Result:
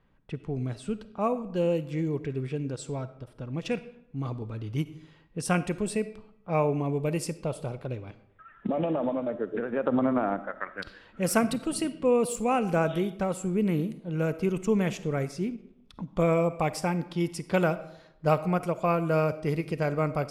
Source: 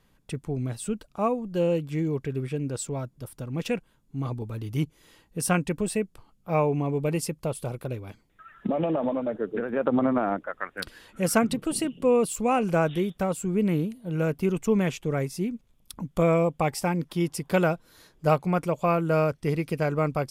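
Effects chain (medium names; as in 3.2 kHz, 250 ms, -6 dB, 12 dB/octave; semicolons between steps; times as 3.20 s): level-controlled noise filter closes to 2.3 kHz, open at -21.5 dBFS; algorithmic reverb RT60 0.8 s, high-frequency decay 0.7×, pre-delay 10 ms, DRR 13.5 dB; endings held to a fixed fall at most 420 dB/s; trim -2 dB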